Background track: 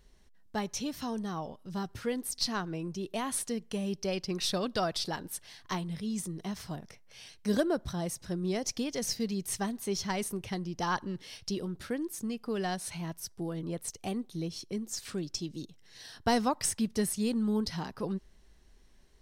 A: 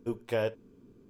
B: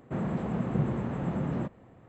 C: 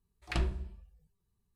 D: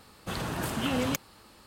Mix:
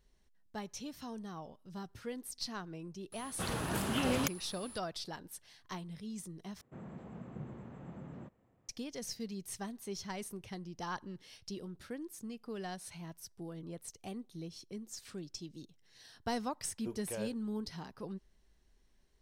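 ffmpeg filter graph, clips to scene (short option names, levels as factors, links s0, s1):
-filter_complex "[0:a]volume=0.355[s0];[4:a]aeval=exprs='val(0)+0.00447*sin(2*PI*10000*n/s)':c=same[s1];[2:a]highshelf=f=6800:g=5.5[s2];[1:a]alimiter=limit=0.075:level=0:latency=1:release=71[s3];[s0]asplit=2[s4][s5];[s4]atrim=end=6.614[s6];[s2]atrim=end=2.08,asetpts=PTS-STARTPTS,volume=0.141[s7];[s5]atrim=start=8.686[s8];[s1]atrim=end=1.66,asetpts=PTS-STARTPTS,volume=0.668,afade=t=in:d=0.004:c=hsin,afade=t=out:st=1.656:d=0.004:c=hsin,adelay=3120[s9];[s3]atrim=end=1.09,asetpts=PTS-STARTPTS,volume=0.355,afade=t=in:d=0.004:c=hsin,afade=t=out:st=1.086:d=0.004:c=hsin,adelay=16790[s10];[s6][s7]acrossfade=d=0.004:c1=hsin:c2=hsin[s11];[s11][s8]acrossfade=d=0.004:c1=hsin:c2=hsin[s12];[s12][s9][s10]amix=inputs=3:normalize=0"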